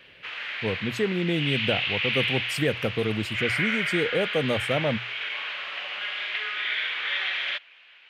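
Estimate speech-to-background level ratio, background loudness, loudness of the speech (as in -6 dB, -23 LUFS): 0.0 dB, -28.0 LUFS, -28.0 LUFS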